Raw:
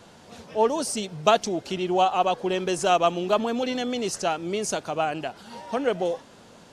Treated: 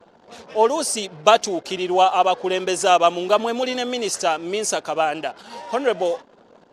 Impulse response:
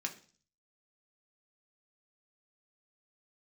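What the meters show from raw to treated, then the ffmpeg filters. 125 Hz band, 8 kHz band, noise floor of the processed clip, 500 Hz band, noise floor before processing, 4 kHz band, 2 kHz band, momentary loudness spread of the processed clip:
-4.0 dB, +6.5 dB, -53 dBFS, +4.5 dB, -50 dBFS, +6.0 dB, +5.5 dB, 9 LU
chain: -af "anlmdn=0.0158,bass=f=250:g=-12,treble=f=4k:g=1,volume=5.5dB"

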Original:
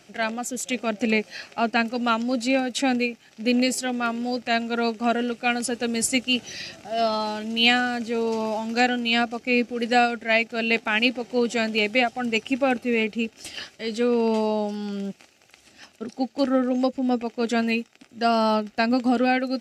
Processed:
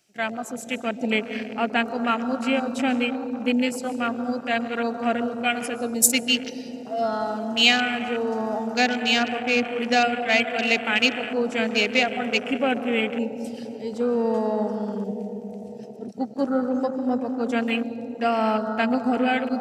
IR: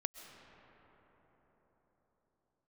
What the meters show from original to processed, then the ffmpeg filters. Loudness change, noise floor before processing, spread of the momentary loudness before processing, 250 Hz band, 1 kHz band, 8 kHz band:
0.0 dB, -56 dBFS, 9 LU, -0.5 dB, -0.5 dB, +4.0 dB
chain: -filter_complex "[1:a]atrim=start_sample=2205[a];[0:a][a]afir=irnorm=-1:irlink=0,afwtdn=0.0282,crystalizer=i=2.5:c=0"

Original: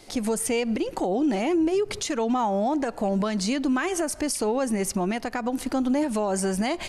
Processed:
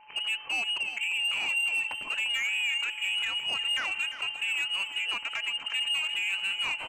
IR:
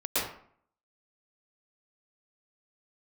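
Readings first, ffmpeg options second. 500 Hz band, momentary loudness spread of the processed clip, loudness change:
-28.5 dB, 4 LU, -2.5 dB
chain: -af "equalizer=f=100:w=1.3:g=-8,bandreject=f=60:t=h:w=6,bandreject=f=120:t=h:w=6,bandreject=f=180:t=h:w=6,bandreject=f=240:t=h:w=6,bandreject=f=300:t=h:w=6,bandreject=f=360:t=h:w=6,bandreject=f=420:t=h:w=6,aresample=16000,aeval=exprs='sgn(val(0))*max(abs(val(0))-0.00188,0)':c=same,aresample=44100,lowpass=f=2.6k:t=q:w=0.5098,lowpass=f=2.6k:t=q:w=0.6013,lowpass=f=2.6k:t=q:w=0.9,lowpass=f=2.6k:t=q:w=2.563,afreqshift=-3100,asoftclip=type=tanh:threshold=-22.5dB,aeval=exprs='val(0)+0.00282*sin(2*PI*860*n/s)':c=same,aecho=1:1:348|696|1044|1392:0.282|0.101|0.0365|0.0131,volume=-2dB"

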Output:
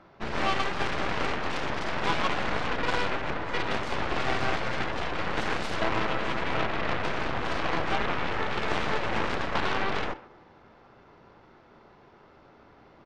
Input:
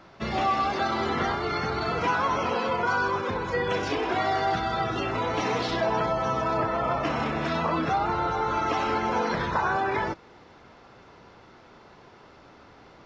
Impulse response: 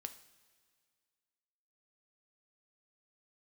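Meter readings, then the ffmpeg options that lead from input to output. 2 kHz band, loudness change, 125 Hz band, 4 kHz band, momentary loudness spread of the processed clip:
+0.5 dB, -3.0 dB, -2.5 dB, +1.5 dB, 3 LU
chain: -filter_complex "[0:a]asplit=2[a][b];[1:a]atrim=start_sample=2205[c];[b][c]afir=irnorm=-1:irlink=0,volume=8.5dB[d];[a][d]amix=inputs=2:normalize=0,aeval=exprs='0.596*(cos(1*acos(clip(val(0)/0.596,-1,1)))-cos(1*PI/2))+0.133*(cos(3*acos(clip(val(0)/0.596,-1,1)))-cos(3*PI/2))+0.075*(cos(7*acos(clip(val(0)/0.596,-1,1)))-cos(7*PI/2))+0.0841*(cos(8*acos(clip(val(0)/0.596,-1,1)))-cos(8*PI/2))':c=same,lowpass=f=2.2k:p=1,asplit=2[e][f];[f]adelay=130,highpass=300,lowpass=3.4k,asoftclip=type=hard:threshold=-13.5dB,volume=-19dB[g];[e][g]amix=inputs=2:normalize=0,volume=-6.5dB"

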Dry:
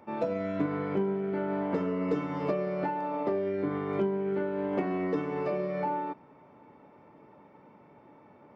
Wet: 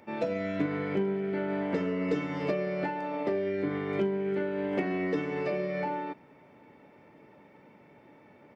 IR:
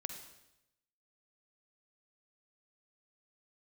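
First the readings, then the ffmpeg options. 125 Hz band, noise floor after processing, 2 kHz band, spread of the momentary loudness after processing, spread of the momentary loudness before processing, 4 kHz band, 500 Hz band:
0.0 dB, -57 dBFS, +4.5 dB, 3 LU, 2 LU, n/a, 0.0 dB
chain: -af "firequalizer=gain_entry='entry(560,0);entry(1100,-5);entry(1800,6)':delay=0.05:min_phase=1"

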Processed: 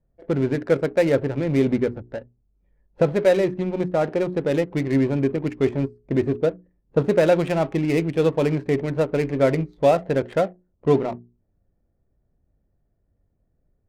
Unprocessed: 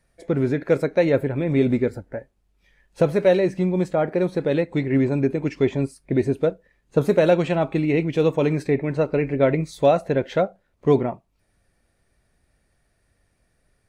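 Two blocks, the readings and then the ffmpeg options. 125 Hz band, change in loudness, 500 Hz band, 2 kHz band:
-1.0 dB, -0.5 dB, -0.5 dB, -0.5 dB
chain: -af "adynamicsmooth=sensitivity=5:basefreq=530,bandreject=f=60:t=h:w=6,bandreject=f=120:t=h:w=6,bandreject=f=180:t=h:w=6,bandreject=f=240:t=h:w=6,bandreject=f=300:t=h:w=6,bandreject=f=360:t=h:w=6,bandreject=f=420:t=h:w=6"

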